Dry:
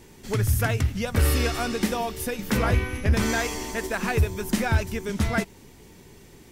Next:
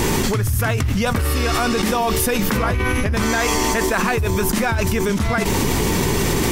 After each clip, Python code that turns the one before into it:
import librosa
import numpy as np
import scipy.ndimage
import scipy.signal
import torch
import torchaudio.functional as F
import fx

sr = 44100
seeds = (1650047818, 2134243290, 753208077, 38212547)

y = fx.peak_eq(x, sr, hz=1100.0, db=5.5, octaves=0.49)
y = fx.env_flatten(y, sr, amount_pct=100)
y = F.gain(torch.from_numpy(y), -3.0).numpy()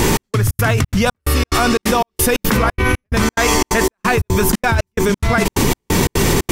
y = fx.step_gate(x, sr, bpm=178, pattern='xx..xx.xxx.', floor_db=-60.0, edge_ms=4.5)
y = F.gain(torch.from_numpy(y), 4.5).numpy()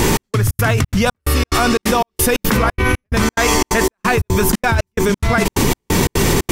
y = x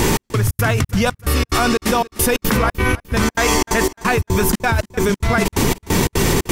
y = fx.echo_feedback(x, sr, ms=301, feedback_pct=44, wet_db=-19.0)
y = F.gain(torch.from_numpy(y), -1.5).numpy()